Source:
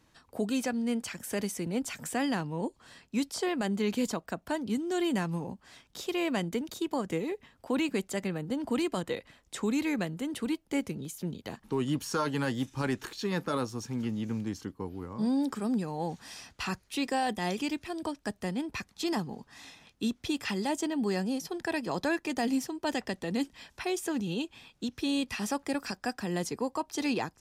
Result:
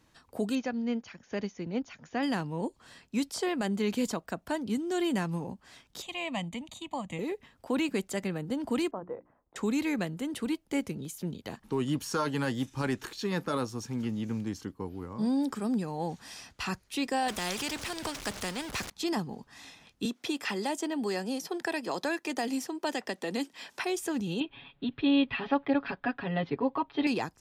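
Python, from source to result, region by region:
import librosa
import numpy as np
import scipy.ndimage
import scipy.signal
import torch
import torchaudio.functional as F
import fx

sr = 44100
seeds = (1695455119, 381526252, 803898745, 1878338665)

y = fx.chain(x, sr, fx.brickwall_lowpass(high_hz=7000.0),
    fx.high_shelf(hz=5500.0, db=-9.0),
    fx.upward_expand(threshold_db=-44.0, expansion=1.5), at=(0.55, 2.23))
y = fx.chain(y, sr, fx.lowpass_res(hz=6600.0, q=2.2),
    fx.fixed_phaser(hz=1500.0, stages=6), at=(6.02, 7.19))
y = fx.chain(y, sr, fx.lowpass(hz=1100.0, slope=24),
    fx.low_shelf(hz=370.0, db=-11.0),
    fx.hum_notches(base_hz=60, count=6), at=(8.91, 9.56))
y = fx.chain(y, sr, fx.zero_step(step_db=-44.0),
    fx.high_shelf(hz=9700.0, db=-11.5),
    fx.spectral_comp(ratio=2.0), at=(17.28, 18.9))
y = fx.chain(y, sr, fx.highpass(hz=280.0, slope=12),
    fx.band_squash(depth_pct=70), at=(20.05, 23.85))
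y = fx.chain(y, sr, fx.steep_lowpass(hz=3700.0, slope=48),
    fx.comb(ms=7.2, depth=0.95), at=(24.4, 27.07))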